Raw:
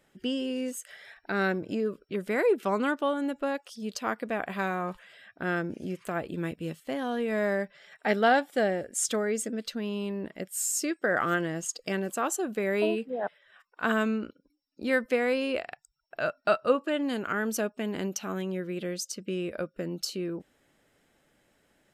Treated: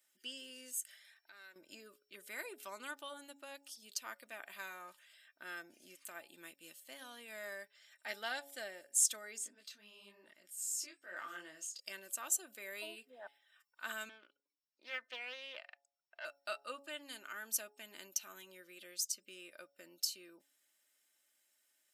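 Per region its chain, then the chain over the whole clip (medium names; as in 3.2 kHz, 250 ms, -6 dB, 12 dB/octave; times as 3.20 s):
0.98–1.56 s: bass shelf 300 Hz -11.5 dB + compression 2:1, threshold -49 dBFS
9.38–11.80 s: transient shaper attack -10 dB, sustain +6 dB + treble shelf 11 kHz -12 dB + detune thickener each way 37 cents
14.09–16.25 s: band-pass 430–3000 Hz + loudspeaker Doppler distortion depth 0.24 ms
whole clip: differentiator; comb 3.3 ms, depth 42%; de-hum 140 Hz, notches 6; trim -1.5 dB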